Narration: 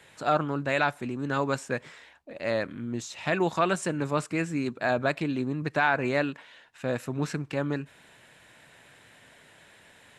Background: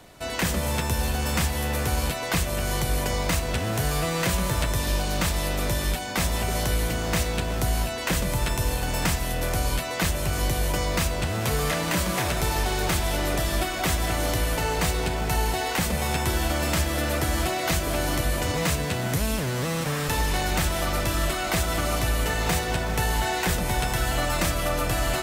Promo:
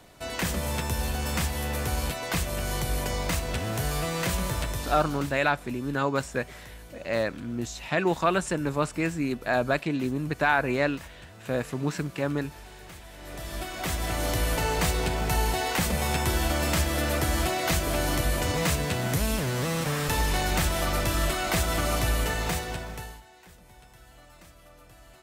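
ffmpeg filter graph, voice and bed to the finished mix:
-filter_complex "[0:a]adelay=4650,volume=1.12[s0];[1:a]volume=7.08,afade=t=out:st=4.44:d=0.98:silence=0.125893,afade=t=in:st=13.16:d=1.35:silence=0.0944061,afade=t=out:st=22.13:d=1.09:silence=0.0473151[s1];[s0][s1]amix=inputs=2:normalize=0"

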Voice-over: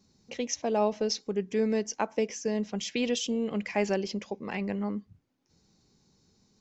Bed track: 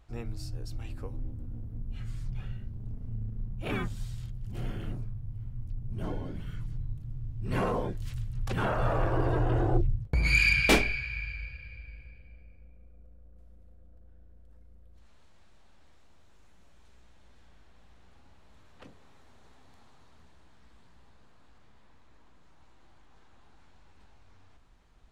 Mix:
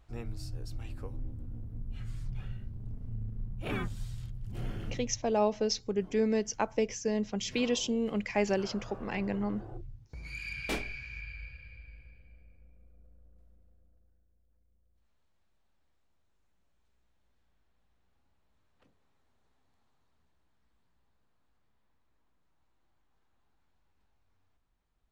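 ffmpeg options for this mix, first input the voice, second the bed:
-filter_complex "[0:a]adelay=4600,volume=0.891[s0];[1:a]volume=3.76,afade=t=out:st=4.84:d=0.56:silence=0.149624,afade=t=in:st=10.42:d=1.04:silence=0.211349,afade=t=out:st=13.22:d=1.03:silence=0.251189[s1];[s0][s1]amix=inputs=2:normalize=0"

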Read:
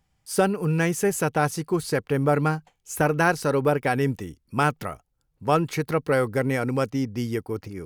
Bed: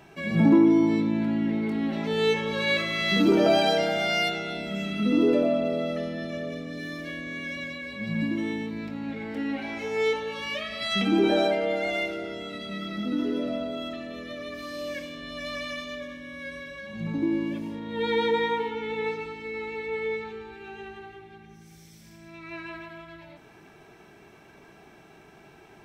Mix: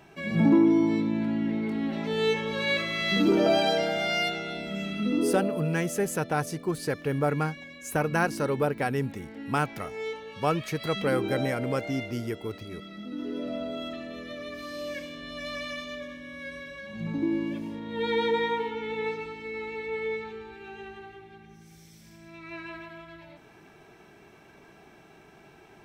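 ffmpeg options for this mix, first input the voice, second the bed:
-filter_complex "[0:a]adelay=4950,volume=0.562[s0];[1:a]volume=2,afade=t=out:st=4.88:d=0.74:silence=0.421697,afade=t=in:st=13.11:d=0.6:silence=0.398107[s1];[s0][s1]amix=inputs=2:normalize=0"

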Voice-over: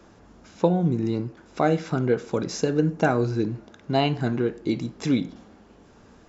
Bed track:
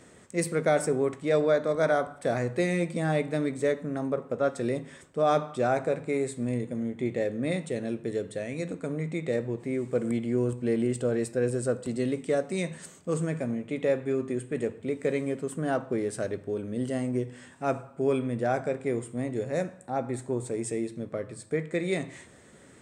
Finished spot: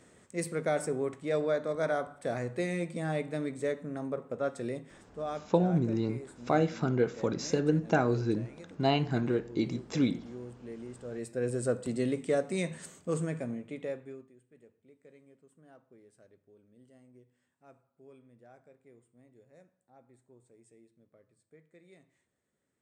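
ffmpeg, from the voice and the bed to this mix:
-filter_complex "[0:a]adelay=4900,volume=0.562[s0];[1:a]volume=2.82,afade=t=out:st=4.54:d=0.98:silence=0.281838,afade=t=in:st=11.03:d=0.65:silence=0.177828,afade=t=out:st=12.99:d=1.32:silence=0.0421697[s1];[s0][s1]amix=inputs=2:normalize=0"

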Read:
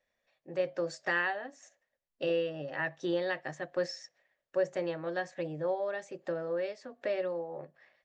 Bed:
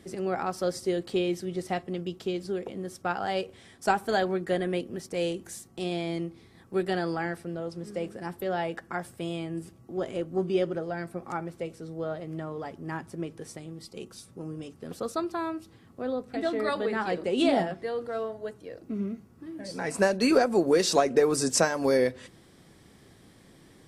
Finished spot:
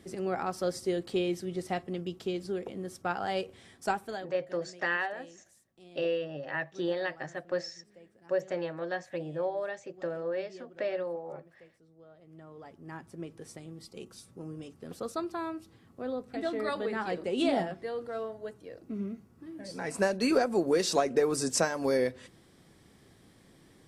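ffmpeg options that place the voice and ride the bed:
-filter_complex "[0:a]adelay=3750,volume=1[s0];[1:a]volume=6.31,afade=t=out:st=3.71:d=0.59:silence=0.1,afade=t=in:st=12.13:d=1.5:silence=0.11885[s1];[s0][s1]amix=inputs=2:normalize=0"

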